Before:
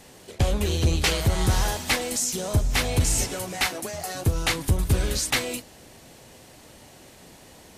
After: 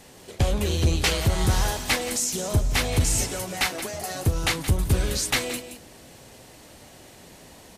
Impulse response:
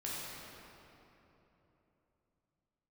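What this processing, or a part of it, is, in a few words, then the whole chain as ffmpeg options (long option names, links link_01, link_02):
ducked delay: -filter_complex "[0:a]asplit=3[link_01][link_02][link_03];[link_02]adelay=173,volume=-5.5dB[link_04];[link_03]apad=whole_len=350660[link_05];[link_04][link_05]sidechaincompress=threshold=-29dB:ratio=8:attack=16:release=680[link_06];[link_01][link_06]amix=inputs=2:normalize=0"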